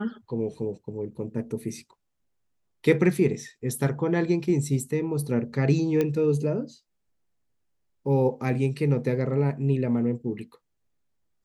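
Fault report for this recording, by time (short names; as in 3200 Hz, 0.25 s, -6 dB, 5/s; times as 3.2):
6.01 pop -13 dBFS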